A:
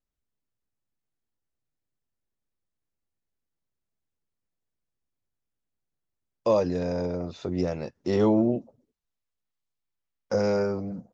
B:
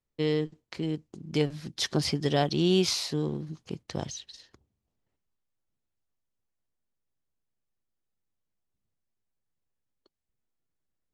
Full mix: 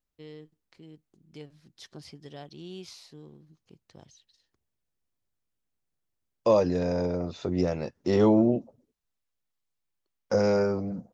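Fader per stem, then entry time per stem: +1.0 dB, -18.5 dB; 0.00 s, 0.00 s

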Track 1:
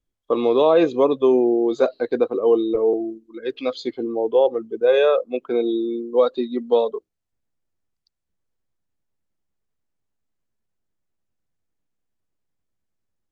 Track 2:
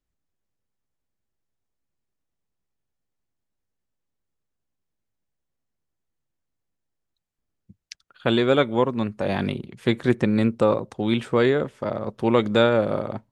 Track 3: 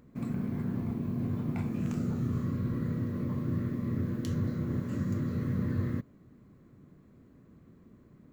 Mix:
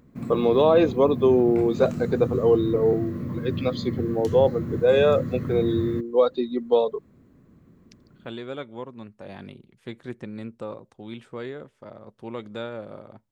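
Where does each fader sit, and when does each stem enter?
-2.0 dB, -15.5 dB, +2.0 dB; 0.00 s, 0.00 s, 0.00 s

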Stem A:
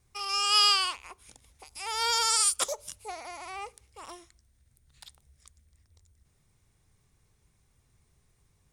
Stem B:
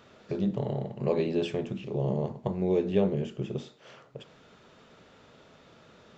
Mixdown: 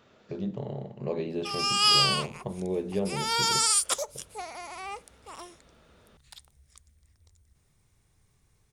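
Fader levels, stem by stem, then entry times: +1.0 dB, -4.5 dB; 1.30 s, 0.00 s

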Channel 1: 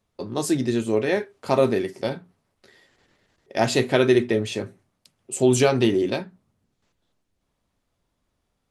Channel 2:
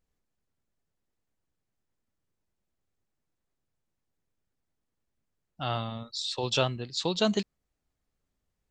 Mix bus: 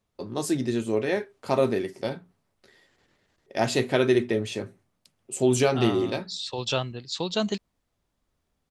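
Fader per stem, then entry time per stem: -3.5 dB, -0.5 dB; 0.00 s, 0.15 s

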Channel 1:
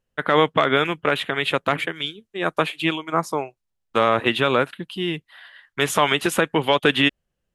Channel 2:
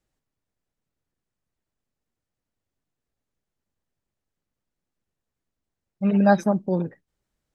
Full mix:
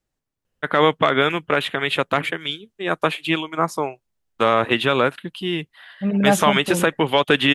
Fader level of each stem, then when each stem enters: +1.0 dB, -0.5 dB; 0.45 s, 0.00 s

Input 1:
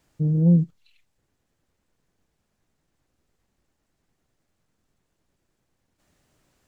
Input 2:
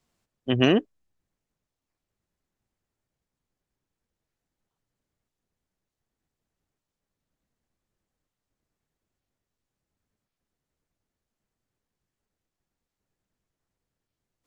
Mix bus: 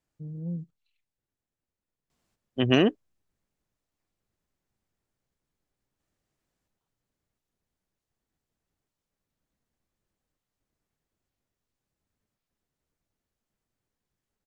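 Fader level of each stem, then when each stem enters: -17.0 dB, -1.0 dB; 0.00 s, 2.10 s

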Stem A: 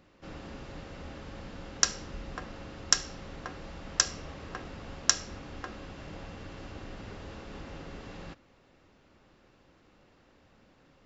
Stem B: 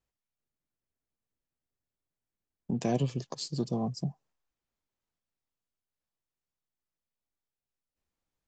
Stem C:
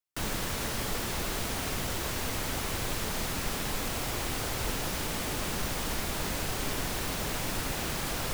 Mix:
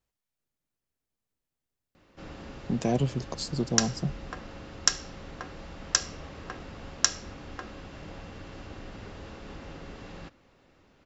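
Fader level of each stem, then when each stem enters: +0.5 dB, +2.5 dB, mute; 1.95 s, 0.00 s, mute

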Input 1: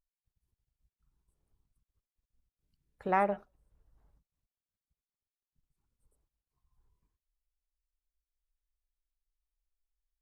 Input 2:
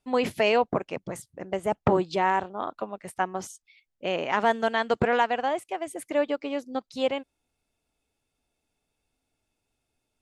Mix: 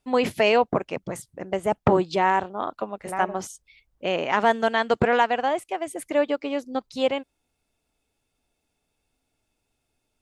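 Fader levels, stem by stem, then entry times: -3.5 dB, +3.0 dB; 0.00 s, 0.00 s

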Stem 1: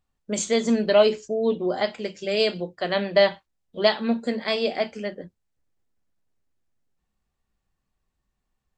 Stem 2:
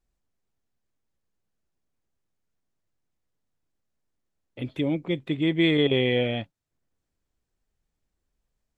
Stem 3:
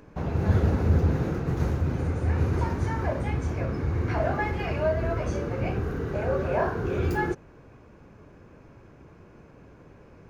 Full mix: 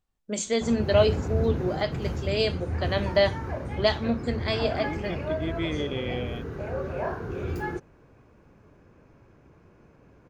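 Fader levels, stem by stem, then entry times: -3.5 dB, -9.5 dB, -5.0 dB; 0.00 s, 0.00 s, 0.45 s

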